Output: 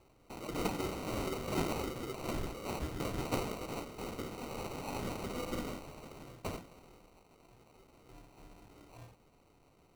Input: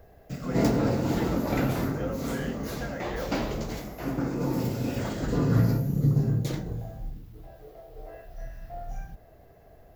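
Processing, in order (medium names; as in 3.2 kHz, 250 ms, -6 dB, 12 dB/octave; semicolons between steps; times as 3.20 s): elliptic high-pass 1.2 kHz; sample-and-hold 26×; trim +4.5 dB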